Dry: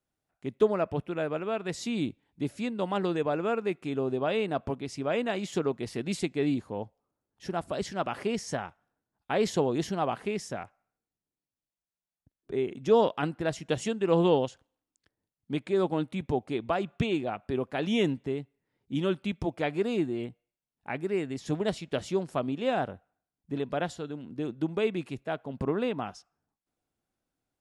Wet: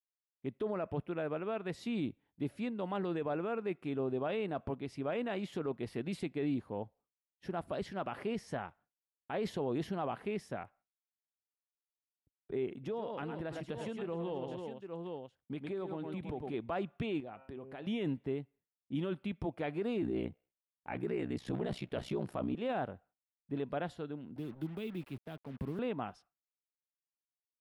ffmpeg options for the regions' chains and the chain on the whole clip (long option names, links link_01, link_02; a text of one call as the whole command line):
ffmpeg -i in.wav -filter_complex "[0:a]asettb=1/sr,asplit=3[link_01][link_02][link_03];[link_01]atrim=end=12.734[link_04];[link_02]atrim=start=12.73:end=16.54,asetpts=PTS-STARTPTS,afade=type=in:duration=0.004:curve=qsin,afade=type=out:start_time=3.806:duration=0.004:curve=qsin,aecho=1:1:106|327|808:0.376|0.158|0.178,atrim=end_sample=168021,acompressor=threshold=-31dB:ratio=5:attack=3.2:release=140:knee=1:detection=peak[link_05];[link_03]atrim=start=16.536[link_06];[link_04][link_05]acrossfade=duration=0.004:curve1=hsin:curve2=qsin[link_07];[link_07][link_06]acrossfade=duration=0.004:curve1=qsin:curve2=hsin,asettb=1/sr,asplit=3[link_08][link_09][link_10];[link_08]atrim=end=17.204[link_11];[link_09]atrim=start=17.2:end=17.87,asetpts=PTS-STARTPTS,afade=type=in:duration=0.004:curve=qsin,afade=type=out:start_time=0.666:duration=0.004:curve=qsin,bandreject=frequency=132.8:width_type=h:width=4,bandreject=frequency=265.6:width_type=h:width=4,bandreject=frequency=398.4:width_type=h:width=4,bandreject=frequency=531.2:width_type=h:width=4,bandreject=frequency=664:width_type=h:width=4,bandreject=frequency=796.8:width_type=h:width=4,bandreject=frequency=929.6:width_type=h:width=4,bandreject=frequency=1062.4:width_type=h:width=4,bandreject=frequency=1195.2:width_type=h:width=4,bandreject=frequency=1328:width_type=h:width=4,bandreject=frequency=1460.8:width_type=h:width=4,bandreject=frequency=1593.6:width_type=h:width=4,bandreject=frequency=1726.4:width_type=h:width=4,bandreject=frequency=1859.2:width_type=h:width=4,bandreject=frequency=1992:width_type=h:width=4,bandreject=frequency=2124.8:width_type=h:width=4,bandreject=frequency=2257.6:width_type=h:width=4,bandreject=frequency=2390.4:width_type=h:width=4,bandreject=frequency=2523.2:width_type=h:width=4,bandreject=frequency=2656:width_type=h:width=4,bandreject=frequency=2788.8:width_type=h:width=4,bandreject=frequency=2921.6:width_type=h:width=4,bandreject=frequency=3054.4:width_type=h:width=4,acompressor=threshold=-41dB:ratio=3:attack=3.2:release=140:knee=1:detection=peak[link_12];[link_10]atrim=start=17.866[link_13];[link_11][link_12]acrossfade=duration=0.004:curve1=hsin:curve2=qsin[link_14];[link_14][link_13]acrossfade=duration=0.004:curve1=qsin:curve2=hsin,asettb=1/sr,asplit=3[link_15][link_16][link_17];[link_15]atrim=end=20.014[link_18];[link_16]atrim=start=20.01:end=22.55,asetpts=PTS-STARTPTS,afade=type=in:duration=0.004:curve=qsin,afade=type=out:start_time=2.536:duration=0.004:curve=qsin,acontrast=77,aeval=exprs='val(0)*sin(2*PI*31*n/s)':channel_layout=same[link_19];[link_17]atrim=start=22.546[link_20];[link_18][link_19]acrossfade=duration=0.004:curve1=hsin:curve2=qsin[link_21];[link_21][link_20]acrossfade=duration=0.004:curve1=qsin:curve2=hsin,asettb=1/sr,asplit=3[link_22][link_23][link_24];[link_22]atrim=end=24.364[link_25];[link_23]atrim=start=24.36:end=25.79,asetpts=PTS-STARTPTS,afade=type=in:duration=0.004:curve=qsin,afade=type=out:start_time=1.426:duration=0.004:curve=qsin,acrossover=split=270|3000[link_26][link_27][link_28];[link_27]acompressor=threshold=-43dB:ratio=5:attack=3.2:release=140:knee=2.83:detection=peak[link_29];[link_26][link_29][link_28]amix=inputs=3:normalize=0,acrusher=bits=7:mix=0:aa=0.5[link_30];[link_24]atrim=start=25.786[link_31];[link_25][link_30]acrossfade=duration=0.004:curve1=hsin:curve2=qsin[link_32];[link_32][link_31]acrossfade=duration=0.004:curve1=qsin:curve2=hsin,alimiter=limit=-22.5dB:level=0:latency=1:release=13,equalizer=frequency=6800:width_type=o:width=1.1:gain=-14.5,agate=range=-33dB:threshold=-55dB:ratio=3:detection=peak,volume=-4.5dB" out.wav